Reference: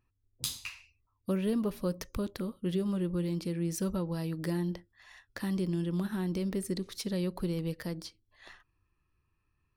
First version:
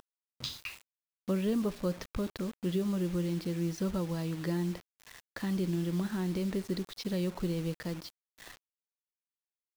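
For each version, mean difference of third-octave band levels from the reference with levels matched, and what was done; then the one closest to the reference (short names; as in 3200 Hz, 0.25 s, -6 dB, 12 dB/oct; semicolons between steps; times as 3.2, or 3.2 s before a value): 4.0 dB: LPF 5200 Hz 24 dB/oct; upward compressor, threshold -47 dBFS; bit-crush 8-bit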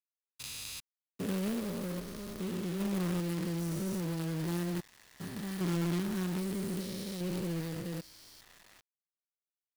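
9.5 dB: stepped spectrum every 0.4 s; high shelf 5000 Hz +3 dB; companded quantiser 4-bit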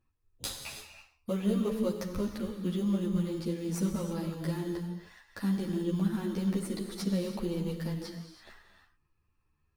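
5.5 dB: in parallel at -8 dB: sample-and-hold 13×; on the sum: non-linear reverb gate 0.36 s flat, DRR 4.5 dB; ensemble effect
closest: first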